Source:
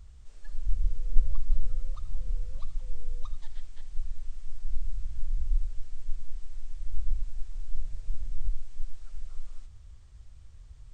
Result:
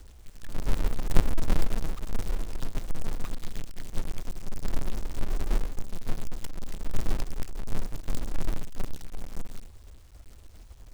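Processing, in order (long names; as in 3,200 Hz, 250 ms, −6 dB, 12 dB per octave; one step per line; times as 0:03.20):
one scale factor per block 3 bits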